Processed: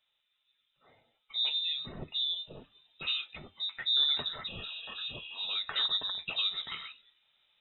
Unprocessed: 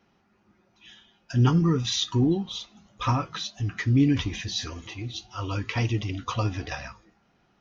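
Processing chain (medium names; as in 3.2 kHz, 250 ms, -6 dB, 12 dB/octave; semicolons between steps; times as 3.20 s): gain riding within 4 dB 2 s; spectral replace 4.50–5.44 s, 400–1900 Hz after; frequency inversion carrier 3.8 kHz; trim -9 dB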